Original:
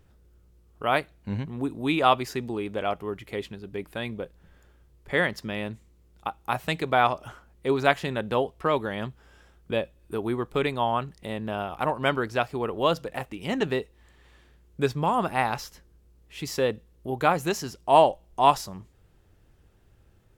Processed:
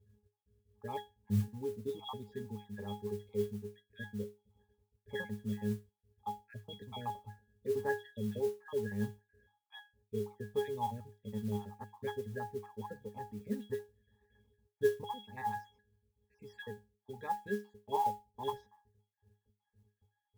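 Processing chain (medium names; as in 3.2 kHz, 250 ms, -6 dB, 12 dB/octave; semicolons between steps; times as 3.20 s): random holes in the spectrogram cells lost 51%; 15.04–17.32 s: tilt shelf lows -4.5 dB, about 1.2 kHz; pitch-class resonator G#, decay 0.25 s; modulation noise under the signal 24 dB; trim +4 dB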